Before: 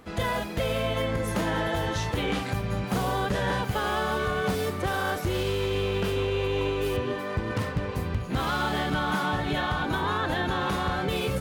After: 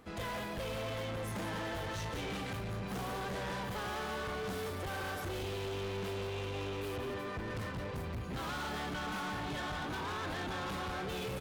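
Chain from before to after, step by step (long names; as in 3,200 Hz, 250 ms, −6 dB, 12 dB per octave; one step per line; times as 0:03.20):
single-tap delay 174 ms −8 dB
hard clipping −29.5 dBFS, distortion −7 dB
level −7 dB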